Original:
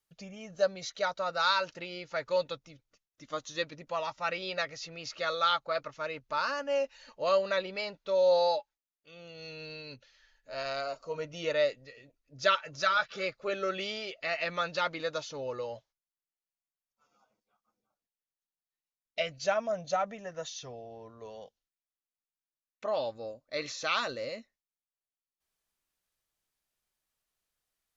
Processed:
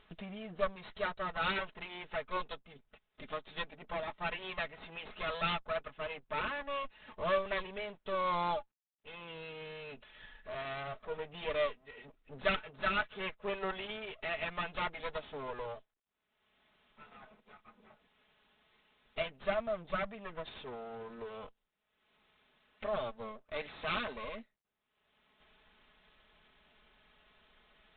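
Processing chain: minimum comb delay 4.7 ms; upward compressor, threshold -33 dBFS; gain -3.5 dB; IMA ADPCM 32 kbps 8000 Hz

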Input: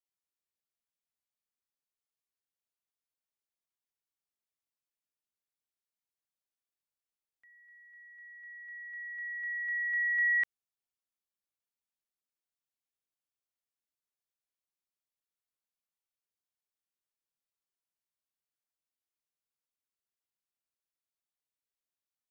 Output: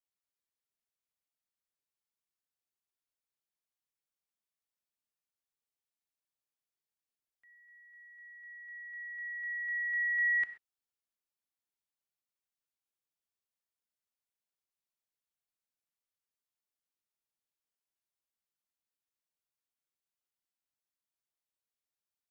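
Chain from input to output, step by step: non-linear reverb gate 0.15 s flat, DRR 10.5 dB; gain -3 dB

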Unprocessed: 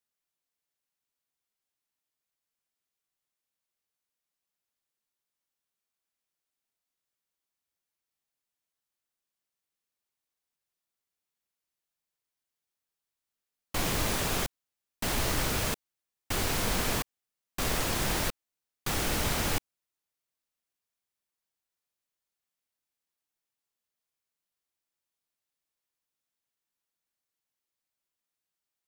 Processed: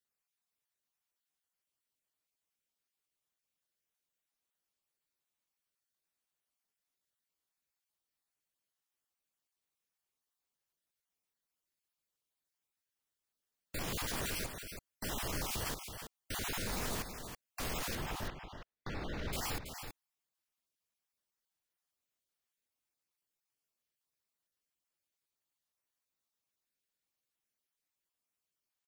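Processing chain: random spectral dropouts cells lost 24%; limiter -27.5 dBFS, peak gain reduction 11 dB; 17.95–19.33 air absorption 250 m; on a send: echo 0.327 s -8 dB; on the sum: gain -1.5 dB

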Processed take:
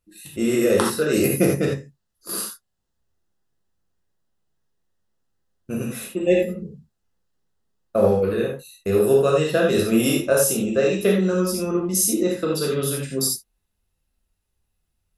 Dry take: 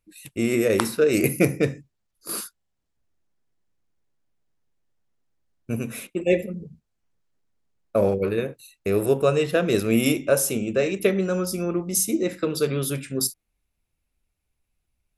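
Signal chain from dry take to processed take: notch 2300 Hz, Q 5.3; non-linear reverb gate 0.11 s flat, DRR -2 dB; gain -1 dB

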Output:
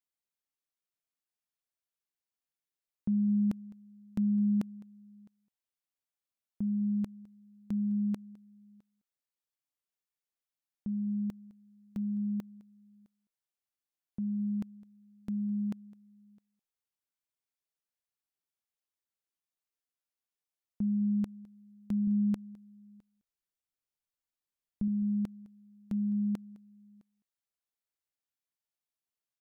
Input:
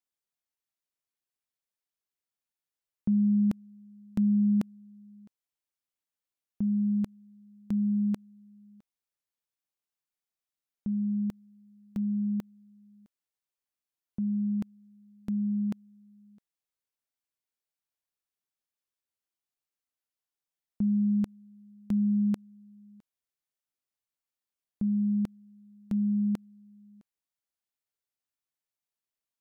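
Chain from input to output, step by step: 22.07–24.88 low shelf 70 Hz +11.5 dB; echo 0.209 s -22 dB; gain -4 dB

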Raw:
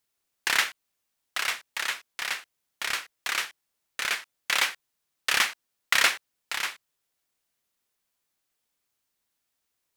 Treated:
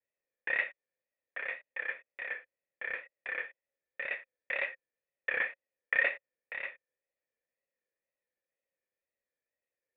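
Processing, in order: vocal tract filter e; vibrato 2 Hz 71 cents; gain +6 dB

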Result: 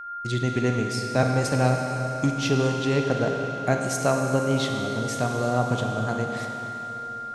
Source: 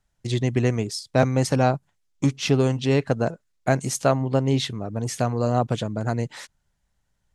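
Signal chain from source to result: whine 1400 Hz -32 dBFS; Schroeder reverb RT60 3.7 s, combs from 32 ms, DRR 2 dB; gain -3 dB

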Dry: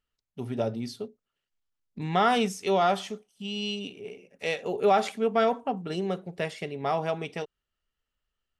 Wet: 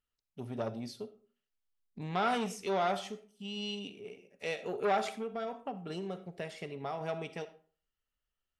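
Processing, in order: 5.15–7.01 compressor 6:1, threshold -28 dBFS, peak gain reduction 9 dB; reverb RT60 0.40 s, pre-delay 20 ms, DRR 13.5 dB; core saturation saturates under 970 Hz; gain -6 dB

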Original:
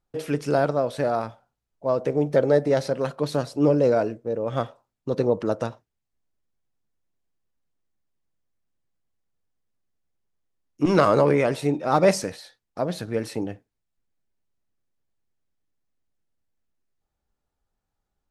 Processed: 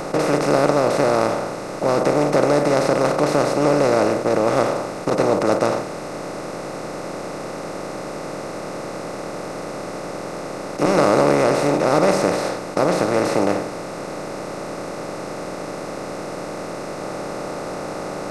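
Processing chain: per-bin compression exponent 0.2; 5.1–5.69 expander -12 dBFS; gain -4.5 dB

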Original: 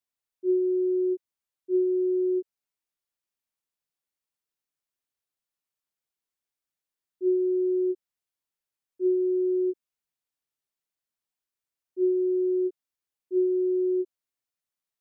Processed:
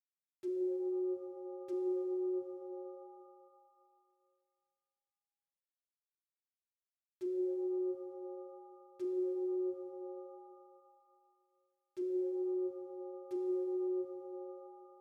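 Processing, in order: bit-crush 8-bit; treble ducked by the level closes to 340 Hz, closed at -24.5 dBFS; limiter -25 dBFS, peak gain reduction 3.5 dB; shimmer reverb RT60 2.3 s, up +7 st, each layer -8 dB, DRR 2 dB; gain -9 dB

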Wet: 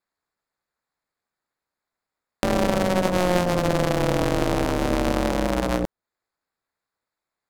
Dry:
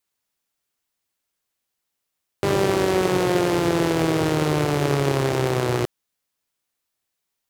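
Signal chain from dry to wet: Wiener smoothing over 15 samples; ring modulator 180 Hz; mismatched tape noise reduction encoder only; gain +2 dB

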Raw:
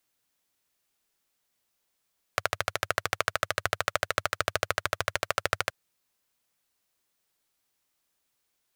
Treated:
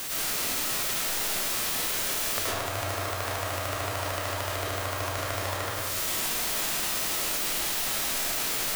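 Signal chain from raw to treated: zero-crossing step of -28.5 dBFS; compressor 10:1, threshold -31 dBFS, peak gain reduction 12.5 dB; digital reverb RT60 1.2 s, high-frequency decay 0.75×, pre-delay 65 ms, DRR -7 dB; formant shift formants -6 st

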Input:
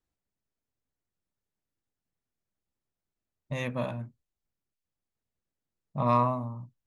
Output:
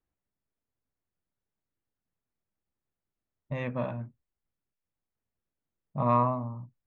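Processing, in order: LPF 2200 Hz 12 dB/oct

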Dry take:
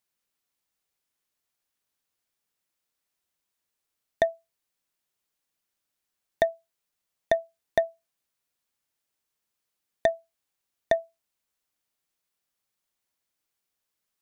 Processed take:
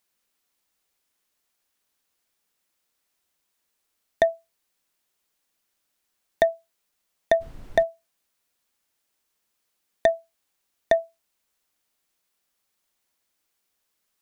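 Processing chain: bell 120 Hz -14.5 dB 0.32 oct; in parallel at +1 dB: limiter -19 dBFS, peak gain reduction 9.5 dB; 7.4–7.82 on the sum: added noise brown -40 dBFS

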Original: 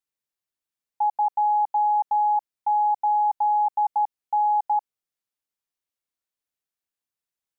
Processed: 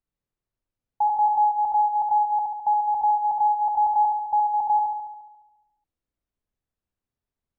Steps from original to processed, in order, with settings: tilt -4.5 dB/oct; on a send: flutter echo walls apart 12 m, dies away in 1.1 s

